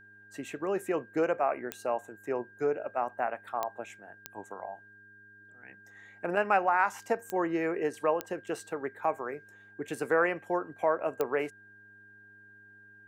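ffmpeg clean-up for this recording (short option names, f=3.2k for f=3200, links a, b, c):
-af "adeclick=t=4,bandreject=f=102.6:t=h:w=4,bandreject=f=205.2:t=h:w=4,bandreject=f=307.8:t=h:w=4,bandreject=f=410.4:t=h:w=4,bandreject=f=1.6k:w=30"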